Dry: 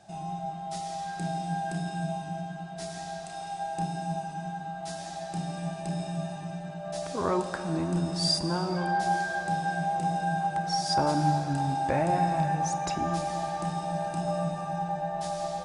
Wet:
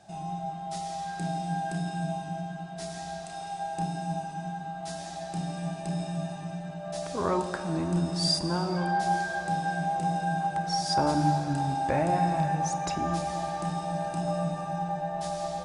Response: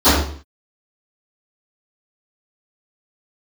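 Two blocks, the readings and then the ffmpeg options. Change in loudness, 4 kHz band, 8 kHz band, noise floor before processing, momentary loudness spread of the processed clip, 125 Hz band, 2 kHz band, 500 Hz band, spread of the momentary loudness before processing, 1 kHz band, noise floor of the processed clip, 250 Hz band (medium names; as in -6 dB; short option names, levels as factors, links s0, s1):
0.0 dB, 0.0 dB, 0.0 dB, -39 dBFS, 11 LU, +0.5 dB, -0.5 dB, 0.0 dB, 11 LU, 0.0 dB, -39 dBFS, +1.0 dB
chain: -filter_complex "[0:a]asplit=2[s0][s1];[1:a]atrim=start_sample=2205[s2];[s1][s2]afir=irnorm=-1:irlink=0,volume=0.00596[s3];[s0][s3]amix=inputs=2:normalize=0"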